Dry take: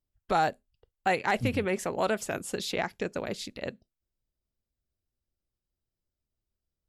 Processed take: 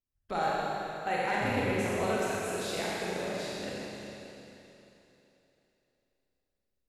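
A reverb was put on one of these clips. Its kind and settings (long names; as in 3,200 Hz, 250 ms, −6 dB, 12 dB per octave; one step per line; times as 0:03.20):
four-comb reverb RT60 3.3 s, combs from 30 ms, DRR −7 dB
level −9 dB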